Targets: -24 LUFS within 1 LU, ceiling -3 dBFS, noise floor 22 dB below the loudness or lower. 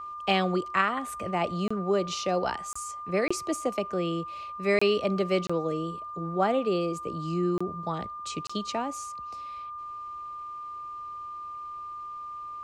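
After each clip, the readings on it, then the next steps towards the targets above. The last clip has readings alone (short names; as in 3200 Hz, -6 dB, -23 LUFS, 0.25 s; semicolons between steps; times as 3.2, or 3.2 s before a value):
dropouts 7; longest dropout 25 ms; steady tone 1200 Hz; tone level -36 dBFS; loudness -30.0 LUFS; peak -11.5 dBFS; loudness target -24.0 LUFS
-> interpolate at 1.68/2.73/3.28/4.79/5.47/7.58/8.47, 25 ms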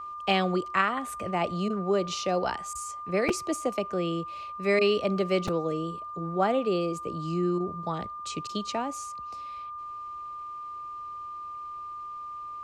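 dropouts 0; steady tone 1200 Hz; tone level -36 dBFS
-> notch 1200 Hz, Q 30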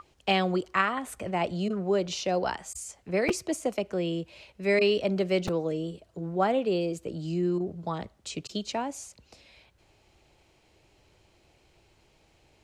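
steady tone none; loudness -29.5 LUFS; peak -11.0 dBFS; loudness target -24.0 LUFS
-> gain +5.5 dB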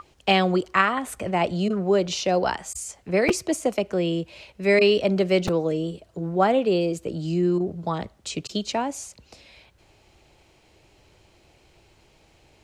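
loudness -24.0 LUFS; peak -5.5 dBFS; noise floor -59 dBFS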